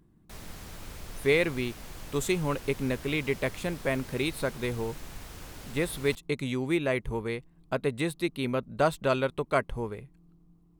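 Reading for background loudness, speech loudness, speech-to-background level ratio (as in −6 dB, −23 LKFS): −45.0 LKFS, −30.0 LKFS, 15.0 dB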